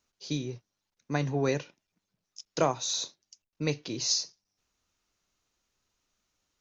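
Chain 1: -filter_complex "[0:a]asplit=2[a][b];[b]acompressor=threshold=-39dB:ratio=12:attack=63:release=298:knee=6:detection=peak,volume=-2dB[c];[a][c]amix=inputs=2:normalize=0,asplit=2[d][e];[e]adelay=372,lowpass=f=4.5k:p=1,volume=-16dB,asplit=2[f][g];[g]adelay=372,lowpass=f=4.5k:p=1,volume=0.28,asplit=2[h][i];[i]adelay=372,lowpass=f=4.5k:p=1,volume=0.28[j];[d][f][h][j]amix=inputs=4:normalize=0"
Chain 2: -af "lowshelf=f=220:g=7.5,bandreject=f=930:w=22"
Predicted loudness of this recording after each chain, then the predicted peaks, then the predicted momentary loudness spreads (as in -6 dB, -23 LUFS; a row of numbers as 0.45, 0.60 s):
-29.0, -29.5 LUFS; -10.0, -10.0 dBFS; 20, 13 LU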